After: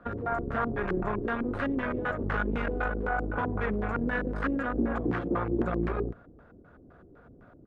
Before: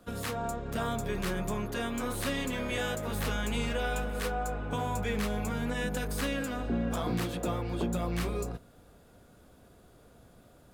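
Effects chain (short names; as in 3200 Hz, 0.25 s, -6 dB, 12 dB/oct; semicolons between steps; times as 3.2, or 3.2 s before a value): dynamic EQ 170 Hz, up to -5 dB, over -46 dBFS, Q 2.2; added harmonics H 5 -20 dB, 6 -13 dB, 7 -31 dB, 8 -24 dB, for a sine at -20.5 dBFS; LFO low-pass square 2.8 Hz 350–1500 Hz; tempo 1.4×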